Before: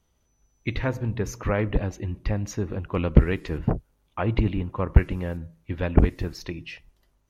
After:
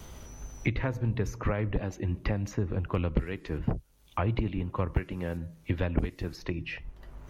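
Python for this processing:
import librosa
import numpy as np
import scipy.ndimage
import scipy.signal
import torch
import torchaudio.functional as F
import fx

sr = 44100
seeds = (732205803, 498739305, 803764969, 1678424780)

y = fx.vibrato(x, sr, rate_hz=2.8, depth_cents=33.0)
y = fx.band_squash(y, sr, depth_pct=100)
y = F.gain(torch.from_numpy(y), -6.0).numpy()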